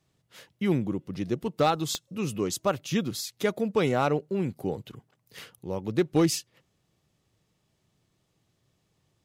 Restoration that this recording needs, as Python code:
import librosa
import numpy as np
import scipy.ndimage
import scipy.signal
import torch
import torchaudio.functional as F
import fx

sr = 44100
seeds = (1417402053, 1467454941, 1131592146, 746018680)

y = fx.fix_declip(x, sr, threshold_db=-15.0)
y = fx.fix_declick_ar(y, sr, threshold=10.0)